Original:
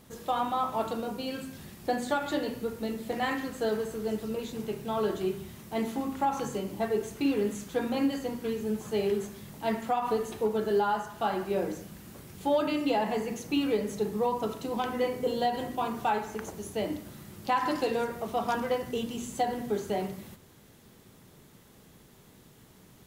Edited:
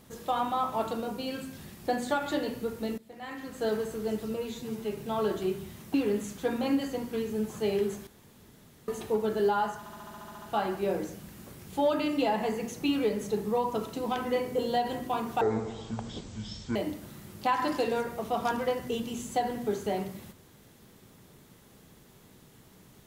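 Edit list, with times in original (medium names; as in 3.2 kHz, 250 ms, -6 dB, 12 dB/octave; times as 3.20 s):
2.98–3.68 s: fade in quadratic, from -17.5 dB
4.34–4.76 s: stretch 1.5×
5.73–7.25 s: delete
9.38–10.19 s: room tone
11.10 s: stutter 0.07 s, 10 plays
16.09–16.79 s: speed 52%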